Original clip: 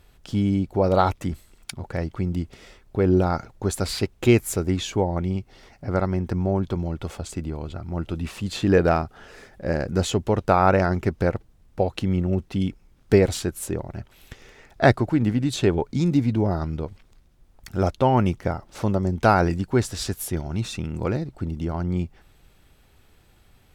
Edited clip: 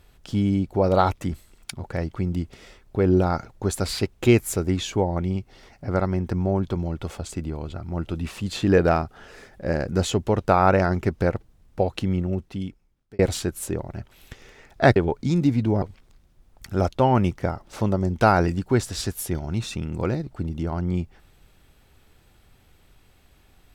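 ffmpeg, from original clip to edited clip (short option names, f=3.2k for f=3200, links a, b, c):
-filter_complex "[0:a]asplit=4[a][b][c][d];[a]atrim=end=13.19,asetpts=PTS-STARTPTS,afade=t=out:st=11.99:d=1.2[e];[b]atrim=start=13.19:end=14.962,asetpts=PTS-STARTPTS,afade=t=in:d=0.004:c=hsin[f];[c]atrim=start=15.658:end=16.522[g];[d]atrim=start=16.838[h];[e][f]concat=n=2:v=0:a=1[i];[i][g]acrossfade=d=0.004:c1=hsin:c2=hsin[j];[j][h]acrossfade=d=0.004:c1=hsin:c2=hsin"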